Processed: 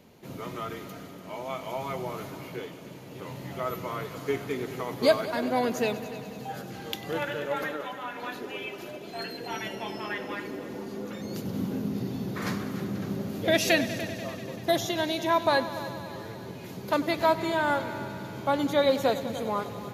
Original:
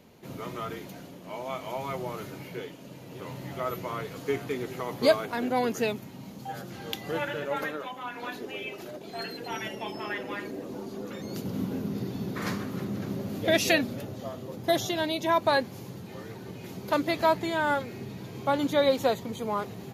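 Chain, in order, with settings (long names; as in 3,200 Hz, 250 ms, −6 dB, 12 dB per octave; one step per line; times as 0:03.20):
echo machine with several playback heads 97 ms, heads all three, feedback 62%, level −18 dB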